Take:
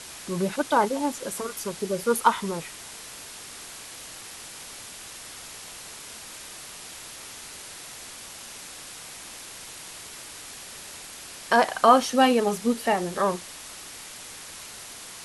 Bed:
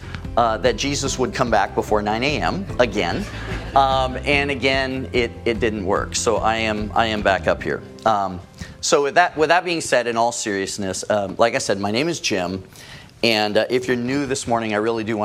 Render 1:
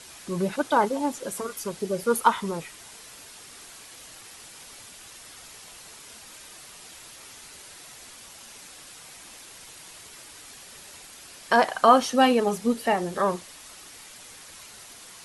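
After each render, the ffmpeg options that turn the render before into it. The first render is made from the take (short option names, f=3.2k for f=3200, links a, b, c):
-af "afftdn=nr=6:nf=-42"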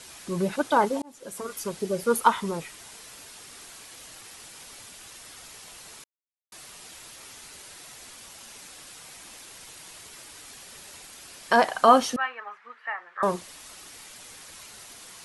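-filter_complex "[0:a]asettb=1/sr,asplit=3[a][b][c];[a]atrim=end=12.164[d];[b]atrim=start=12.16:end=13.23,asetpts=PTS-STARTPTS,afade=t=in:d=0.004:c=qsin,afade=t=out:st=1.066:d=0.004:c=qsin,asuperpass=centerf=1500:order=4:qfactor=1.6[e];[c]atrim=start=13.226[f];[d][e]acrossfade=d=0.004:c1=hsin:c2=qsin[g];[g][f]acrossfade=d=0.004:c1=qsin:c2=hsin,asplit=4[h][i][j][k];[h]atrim=end=1.02,asetpts=PTS-STARTPTS,afade=t=out:st=1.016:d=0.004:c=hsin[l];[i]atrim=start=1.02:end=6.04,asetpts=PTS-STARTPTS,afade=t=in:d=0.57,afade=t=out:st=5.016:d=0.004:c=hsin[m];[j]atrim=start=6.04:end=6.52,asetpts=PTS-STARTPTS,volume=0[n];[k]atrim=start=6.52,asetpts=PTS-STARTPTS,afade=t=in:d=0.004:c=hsin[o];[l][m][n][o]concat=n=4:v=0:a=1"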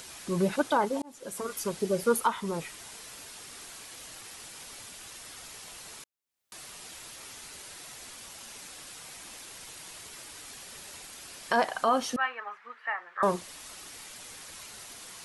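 -af "acompressor=mode=upward:threshold=-47dB:ratio=2.5,alimiter=limit=-14dB:level=0:latency=1:release=378"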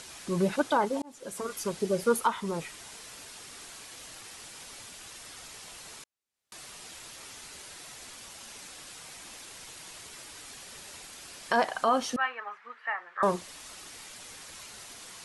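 -af "lowpass=11k"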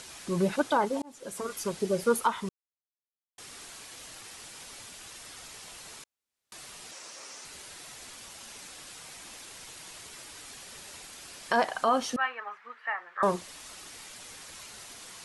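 -filter_complex "[0:a]asettb=1/sr,asplit=3[a][b][c];[a]atrim=end=6.914[d];[b]atrim=start=6.91:end=7.45,asetpts=PTS-STARTPTS,afade=t=in:d=0.004:c=qsin,afade=t=out:st=0.536:d=0.004:c=qsin,highpass=250,equalizer=f=550:t=q:w=4:g=6,equalizer=f=1.1k:t=q:w=4:g=3,equalizer=f=3.4k:t=q:w=4:g=-4,equalizer=f=5.7k:t=q:w=4:g=6,lowpass=f=9.5k:w=0.5412,lowpass=f=9.5k:w=1.3066[e];[c]atrim=start=7.446[f];[d][e]acrossfade=d=0.004:c1=hsin:c2=qsin[g];[g][f]acrossfade=d=0.004:c1=qsin:c2=hsin,asplit=3[h][i][j];[h]atrim=end=2.49,asetpts=PTS-STARTPTS,afade=t=out:st=2.486:d=0.004:c=hsin[k];[i]atrim=start=2.49:end=3.38,asetpts=PTS-STARTPTS,volume=0[l];[j]atrim=start=3.38,asetpts=PTS-STARTPTS,afade=t=in:d=0.004:c=hsin[m];[k][l][m]concat=n=3:v=0:a=1"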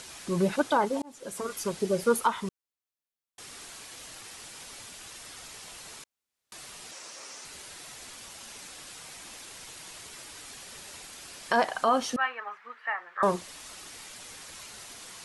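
-af "volume=1dB"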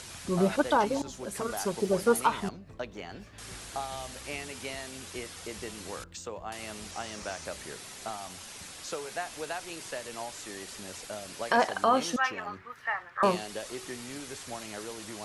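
-filter_complex "[1:a]volume=-21dB[a];[0:a][a]amix=inputs=2:normalize=0"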